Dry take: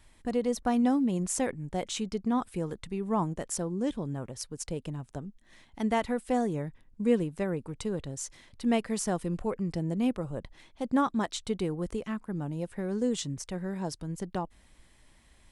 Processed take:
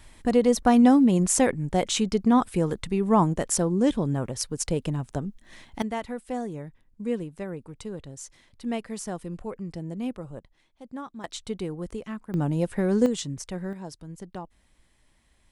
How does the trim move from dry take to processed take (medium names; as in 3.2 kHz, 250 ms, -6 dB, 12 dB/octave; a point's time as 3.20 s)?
+8.5 dB
from 5.82 s -3.5 dB
from 10.39 s -11.5 dB
from 11.24 s -1 dB
from 12.34 s +9 dB
from 13.06 s +2 dB
from 13.73 s -4.5 dB